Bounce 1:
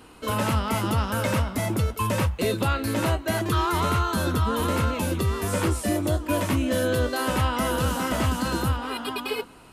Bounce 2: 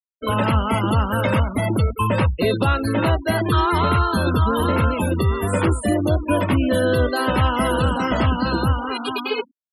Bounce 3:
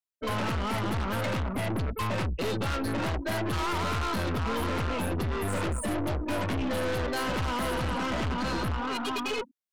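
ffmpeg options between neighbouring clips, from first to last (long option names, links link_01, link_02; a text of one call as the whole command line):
ffmpeg -i in.wav -af "afftfilt=real='re*gte(hypot(re,im),0.0316)':imag='im*gte(hypot(re,im),0.0316)':win_size=1024:overlap=0.75,volume=5.5dB" out.wav
ffmpeg -i in.wav -af "aeval=exprs='(tanh(25.1*val(0)+0.35)-tanh(0.35))/25.1':channel_layout=same" out.wav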